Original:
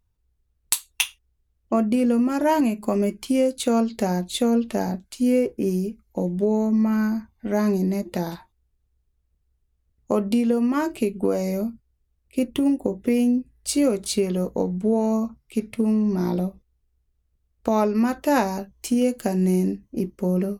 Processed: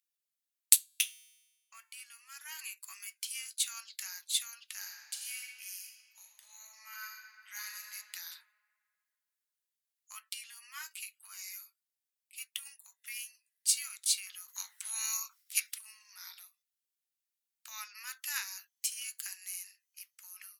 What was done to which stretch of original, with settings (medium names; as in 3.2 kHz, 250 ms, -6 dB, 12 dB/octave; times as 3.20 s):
0.76–2.59 s: feedback comb 150 Hz, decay 1.2 s, mix 50%
4.75–7.93 s: reverb throw, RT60 2.2 s, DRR 1 dB
10.21–12.54 s: comb of notches 200 Hz
14.48–15.77 s: spectral peaks clipped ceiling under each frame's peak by 25 dB
whole clip: Bessel high-pass 2.5 kHz, order 8; treble shelf 6.9 kHz +6 dB; trim -3 dB